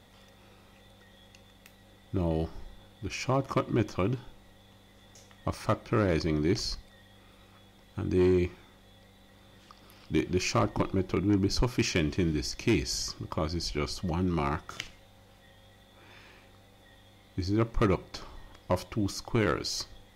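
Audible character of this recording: noise floor -58 dBFS; spectral tilt -5.5 dB/oct

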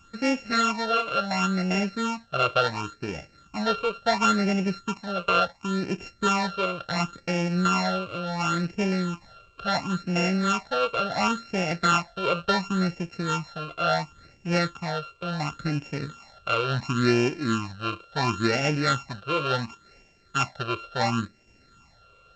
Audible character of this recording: a buzz of ramps at a fixed pitch in blocks of 32 samples; phasing stages 8, 0.71 Hz, lowest notch 240–1200 Hz; G.722

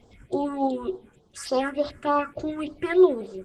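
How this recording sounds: phasing stages 4, 3.4 Hz, lowest notch 660–2200 Hz; tremolo triangle 9.7 Hz, depth 30%; Opus

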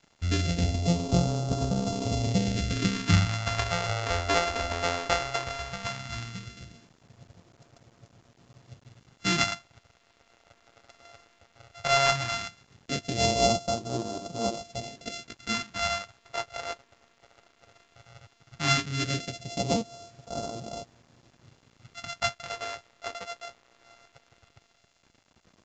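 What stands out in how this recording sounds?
a buzz of ramps at a fixed pitch in blocks of 64 samples; phasing stages 2, 0.16 Hz, lowest notch 150–1900 Hz; a quantiser's noise floor 10-bit, dither none; µ-law

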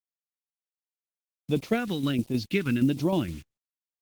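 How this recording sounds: a quantiser's noise floor 8-bit, dither none; phasing stages 2, 1.4 Hz, lowest notch 650–1500 Hz; tremolo saw down 6.4 Hz, depth 50%; Opus

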